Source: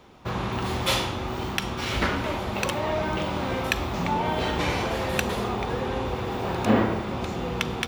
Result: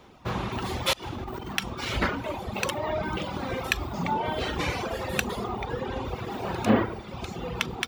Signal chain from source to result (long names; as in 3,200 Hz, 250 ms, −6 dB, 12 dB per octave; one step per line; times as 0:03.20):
reverb reduction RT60 2 s
0:00.93–0:01.53: compressor whose output falls as the input rises −36 dBFS, ratio −0.5